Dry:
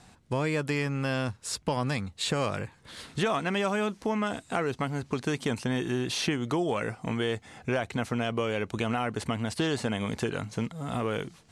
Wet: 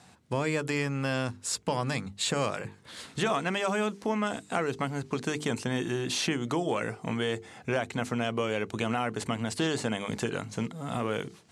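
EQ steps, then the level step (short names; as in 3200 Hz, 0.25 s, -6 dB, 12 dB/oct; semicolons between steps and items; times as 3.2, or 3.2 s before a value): HPF 98 Hz; dynamic EQ 7300 Hz, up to +5 dB, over -57 dBFS, Q 3.1; notches 50/100/150/200/250/300/350/400/450 Hz; 0.0 dB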